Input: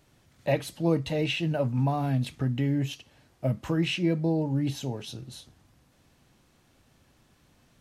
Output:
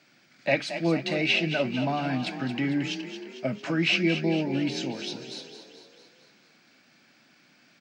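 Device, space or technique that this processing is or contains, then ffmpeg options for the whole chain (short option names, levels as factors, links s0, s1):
old television with a line whistle: -filter_complex "[0:a]highpass=f=180:w=0.5412,highpass=f=180:w=1.3066,equalizer=f=440:t=q:w=4:g=-8,equalizer=f=980:t=q:w=4:g=-6,equalizer=f=1500:t=q:w=4:g=7,equalizer=f=2300:t=q:w=4:g=10,equalizer=f=4800:t=q:w=4:g=9,lowpass=f=8300:w=0.5412,lowpass=f=8300:w=1.3066,aeval=exprs='val(0)+0.001*sin(2*PI*15625*n/s)':c=same,lowpass=7300,asplit=8[s0][s1][s2][s3][s4][s5][s6][s7];[s1]adelay=225,afreqshift=32,volume=0.316[s8];[s2]adelay=450,afreqshift=64,volume=0.18[s9];[s3]adelay=675,afreqshift=96,volume=0.102[s10];[s4]adelay=900,afreqshift=128,volume=0.0589[s11];[s5]adelay=1125,afreqshift=160,volume=0.0335[s12];[s6]adelay=1350,afreqshift=192,volume=0.0191[s13];[s7]adelay=1575,afreqshift=224,volume=0.0108[s14];[s0][s8][s9][s10][s11][s12][s13][s14]amix=inputs=8:normalize=0,volume=1.33"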